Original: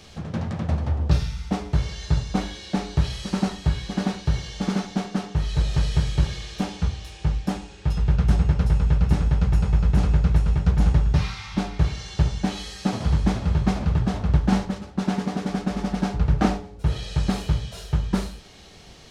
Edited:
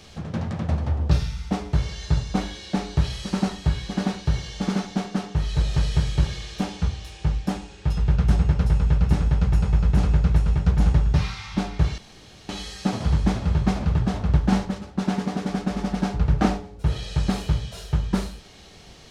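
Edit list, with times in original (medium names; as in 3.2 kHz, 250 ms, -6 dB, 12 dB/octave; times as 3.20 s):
11.98–12.49 s: room tone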